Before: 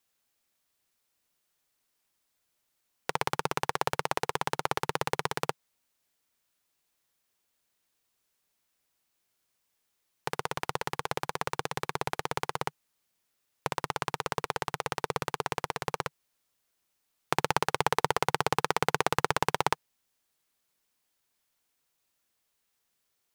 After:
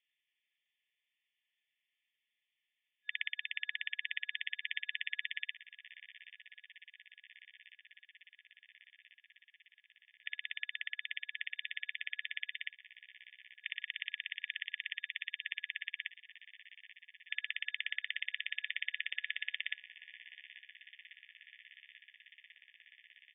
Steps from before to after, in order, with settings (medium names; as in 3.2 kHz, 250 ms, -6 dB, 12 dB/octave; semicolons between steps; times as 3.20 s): peak limiter -8.5 dBFS, peak gain reduction 4 dB; on a send: shuffle delay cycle 1391 ms, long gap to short 1.5:1, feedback 67%, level -18 dB; on the sum: FFT band-pass 1.7–3.6 kHz; trim +1.5 dB